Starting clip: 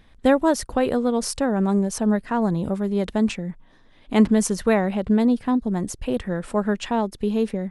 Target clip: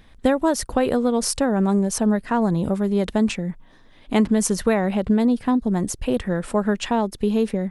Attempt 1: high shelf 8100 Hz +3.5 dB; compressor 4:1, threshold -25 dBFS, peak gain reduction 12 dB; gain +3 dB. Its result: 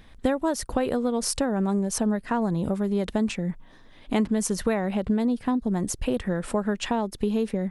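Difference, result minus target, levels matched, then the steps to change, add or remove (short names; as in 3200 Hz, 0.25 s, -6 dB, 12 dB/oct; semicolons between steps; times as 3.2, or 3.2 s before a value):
compressor: peak gain reduction +5.5 dB
change: compressor 4:1, threshold -17.5 dBFS, peak gain reduction 6.5 dB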